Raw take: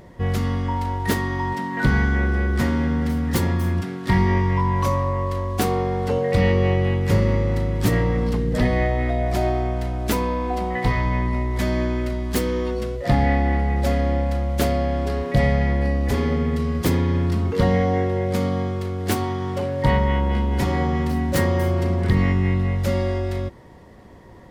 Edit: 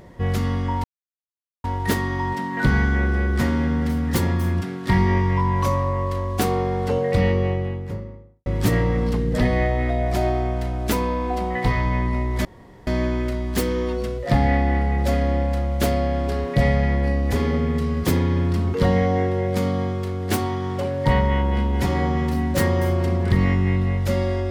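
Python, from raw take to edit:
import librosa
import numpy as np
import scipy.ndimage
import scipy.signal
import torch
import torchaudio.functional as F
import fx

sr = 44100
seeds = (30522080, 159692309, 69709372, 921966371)

y = fx.studio_fade_out(x, sr, start_s=6.13, length_s=1.53)
y = fx.edit(y, sr, fx.insert_silence(at_s=0.84, length_s=0.8),
    fx.insert_room_tone(at_s=11.65, length_s=0.42), tone=tone)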